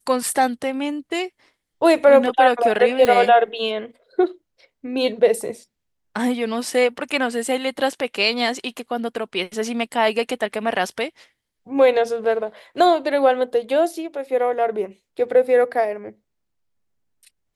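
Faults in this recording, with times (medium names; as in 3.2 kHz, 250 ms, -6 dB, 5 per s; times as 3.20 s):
3.05 s: pop -6 dBFS
7.11 s: dropout 3.9 ms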